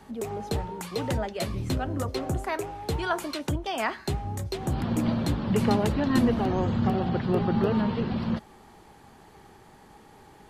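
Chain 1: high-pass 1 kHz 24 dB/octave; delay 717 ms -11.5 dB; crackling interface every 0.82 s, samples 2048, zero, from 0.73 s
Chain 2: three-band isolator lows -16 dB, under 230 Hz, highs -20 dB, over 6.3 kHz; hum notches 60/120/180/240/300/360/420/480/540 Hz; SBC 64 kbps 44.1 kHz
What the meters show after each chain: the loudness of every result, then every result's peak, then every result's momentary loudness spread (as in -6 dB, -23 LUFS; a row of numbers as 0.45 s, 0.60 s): -37.5 LUFS, -31.5 LUFS; -16.5 dBFS, -13.5 dBFS; 20 LU, 8 LU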